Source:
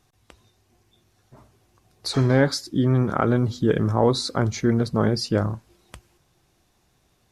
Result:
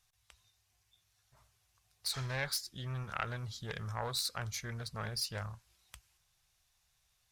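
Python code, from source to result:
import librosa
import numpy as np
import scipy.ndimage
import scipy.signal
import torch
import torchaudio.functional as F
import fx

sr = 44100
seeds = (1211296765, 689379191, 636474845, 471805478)

y = fx.self_delay(x, sr, depth_ms=0.17)
y = fx.tone_stack(y, sr, knobs='10-0-10')
y = F.gain(torch.from_numpy(y), -4.5).numpy()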